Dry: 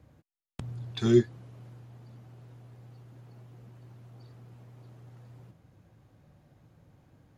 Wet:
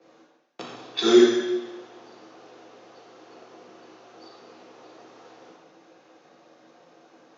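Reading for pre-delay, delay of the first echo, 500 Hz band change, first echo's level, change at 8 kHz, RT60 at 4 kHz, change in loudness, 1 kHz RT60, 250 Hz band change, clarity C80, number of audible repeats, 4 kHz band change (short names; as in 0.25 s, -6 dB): 3 ms, none, +8.5 dB, none, n/a, 1.1 s, +7.5 dB, 1.1 s, +7.0 dB, 1.5 dB, none, +14.5 dB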